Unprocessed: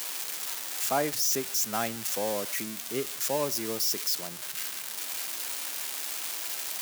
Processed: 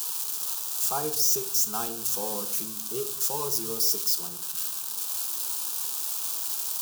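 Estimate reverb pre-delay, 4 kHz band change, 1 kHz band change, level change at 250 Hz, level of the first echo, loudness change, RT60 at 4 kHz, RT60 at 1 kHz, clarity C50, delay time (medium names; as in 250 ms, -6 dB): 5 ms, +0.5 dB, -1.5 dB, -4.0 dB, no echo, +3.5 dB, 0.40 s, 0.55 s, 13.5 dB, no echo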